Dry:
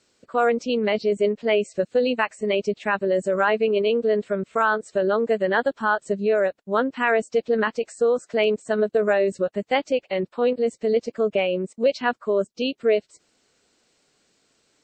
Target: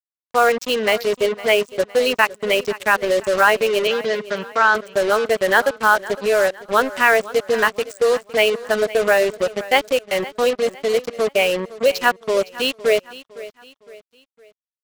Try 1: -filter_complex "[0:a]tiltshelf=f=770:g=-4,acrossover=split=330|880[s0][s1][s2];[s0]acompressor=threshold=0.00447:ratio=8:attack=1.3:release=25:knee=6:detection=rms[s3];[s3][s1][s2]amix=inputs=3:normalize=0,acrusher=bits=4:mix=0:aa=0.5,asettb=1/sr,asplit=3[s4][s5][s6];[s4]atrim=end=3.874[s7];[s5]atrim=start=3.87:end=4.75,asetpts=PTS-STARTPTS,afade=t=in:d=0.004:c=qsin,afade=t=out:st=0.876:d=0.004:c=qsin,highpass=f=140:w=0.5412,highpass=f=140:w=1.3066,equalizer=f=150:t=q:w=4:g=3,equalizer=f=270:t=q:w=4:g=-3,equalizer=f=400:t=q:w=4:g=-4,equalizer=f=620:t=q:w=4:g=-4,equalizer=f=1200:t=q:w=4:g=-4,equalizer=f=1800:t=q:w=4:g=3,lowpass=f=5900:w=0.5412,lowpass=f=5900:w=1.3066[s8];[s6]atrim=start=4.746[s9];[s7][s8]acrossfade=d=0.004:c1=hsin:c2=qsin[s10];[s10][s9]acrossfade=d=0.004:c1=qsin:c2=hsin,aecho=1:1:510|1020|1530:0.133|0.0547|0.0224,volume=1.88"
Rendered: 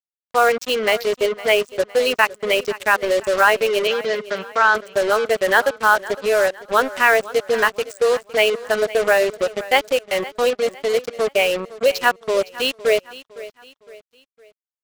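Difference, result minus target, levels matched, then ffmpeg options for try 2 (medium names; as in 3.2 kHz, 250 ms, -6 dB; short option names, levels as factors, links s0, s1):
compression: peak gain reduction +8 dB
-filter_complex "[0:a]tiltshelf=f=770:g=-4,acrossover=split=330|880[s0][s1][s2];[s0]acompressor=threshold=0.0126:ratio=8:attack=1.3:release=25:knee=6:detection=rms[s3];[s3][s1][s2]amix=inputs=3:normalize=0,acrusher=bits=4:mix=0:aa=0.5,asettb=1/sr,asplit=3[s4][s5][s6];[s4]atrim=end=3.874[s7];[s5]atrim=start=3.87:end=4.75,asetpts=PTS-STARTPTS,afade=t=in:d=0.004:c=qsin,afade=t=out:st=0.876:d=0.004:c=qsin,highpass=f=140:w=0.5412,highpass=f=140:w=1.3066,equalizer=f=150:t=q:w=4:g=3,equalizer=f=270:t=q:w=4:g=-3,equalizer=f=400:t=q:w=4:g=-4,equalizer=f=620:t=q:w=4:g=-4,equalizer=f=1200:t=q:w=4:g=-4,equalizer=f=1800:t=q:w=4:g=3,lowpass=f=5900:w=0.5412,lowpass=f=5900:w=1.3066[s8];[s6]atrim=start=4.746[s9];[s7][s8]acrossfade=d=0.004:c1=hsin:c2=qsin[s10];[s10][s9]acrossfade=d=0.004:c1=qsin:c2=hsin,aecho=1:1:510|1020|1530:0.133|0.0547|0.0224,volume=1.88"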